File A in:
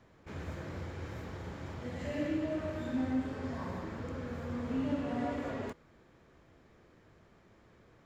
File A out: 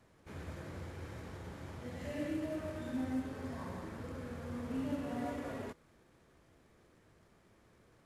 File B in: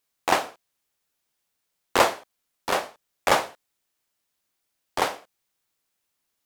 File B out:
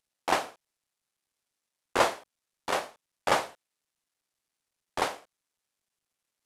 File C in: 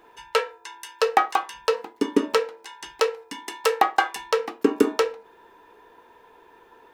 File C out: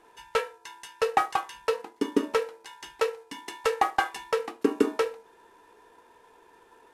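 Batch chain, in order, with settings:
variable-slope delta modulation 64 kbit/s
level −4 dB

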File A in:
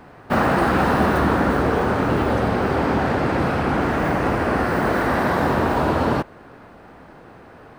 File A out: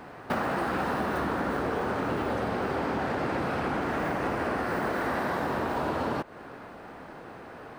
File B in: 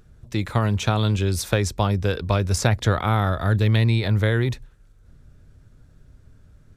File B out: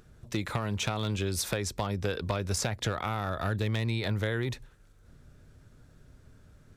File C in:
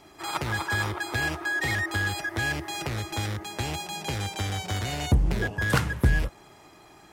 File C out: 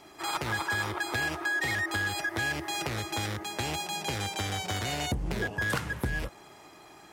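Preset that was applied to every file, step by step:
low-shelf EQ 140 Hz −8.5 dB
downward compressor 8 to 1, threshold −27 dBFS
hard clipping −22 dBFS
level +1 dB

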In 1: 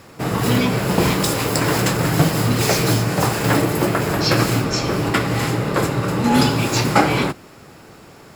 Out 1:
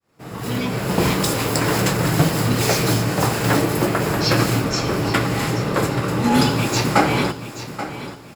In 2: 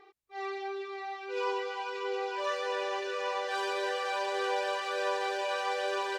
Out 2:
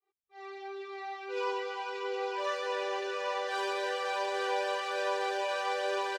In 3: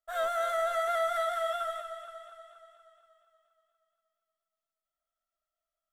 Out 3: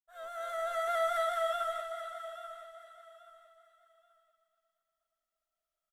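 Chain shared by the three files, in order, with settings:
fade in at the beginning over 1.06 s
on a send: repeating echo 831 ms, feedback 27%, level −12.5 dB
on the sum: level −1 dB

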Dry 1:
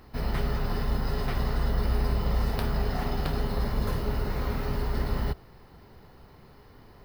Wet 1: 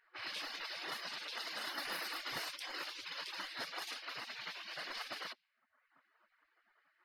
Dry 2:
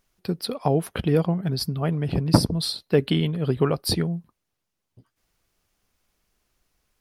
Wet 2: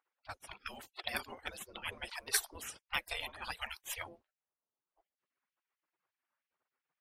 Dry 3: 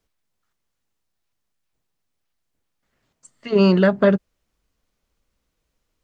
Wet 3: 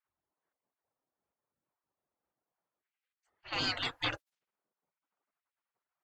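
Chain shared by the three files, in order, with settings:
low-pass that shuts in the quiet parts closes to 830 Hz, open at −19.5 dBFS
reverb reduction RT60 0.72 s
gate on every frequency bin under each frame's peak −30 dB weak
level +6 dB

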